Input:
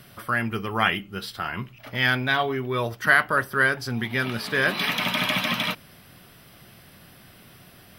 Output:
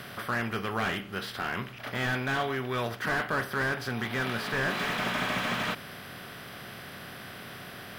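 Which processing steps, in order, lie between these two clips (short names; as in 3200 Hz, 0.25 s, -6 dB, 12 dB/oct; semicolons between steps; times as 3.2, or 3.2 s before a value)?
per-bin compression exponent 0.6; slew limiter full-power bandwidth 170 Hz; gain -7.5 dB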